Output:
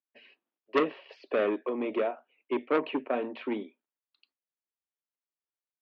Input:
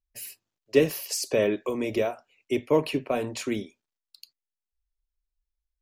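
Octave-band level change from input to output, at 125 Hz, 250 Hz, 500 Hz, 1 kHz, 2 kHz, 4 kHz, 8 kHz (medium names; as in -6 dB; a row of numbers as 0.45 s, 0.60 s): -18.0 dB, -4.0 dB, -4.5 dB, +1.0 dB, -2.5 dB, -9.5 dB, under -35 dB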